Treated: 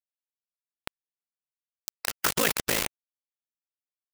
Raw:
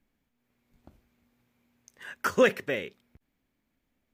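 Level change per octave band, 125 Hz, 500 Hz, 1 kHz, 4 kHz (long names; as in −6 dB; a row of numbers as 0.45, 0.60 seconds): +3.0, −7.5, +0.5, +9.5 decibels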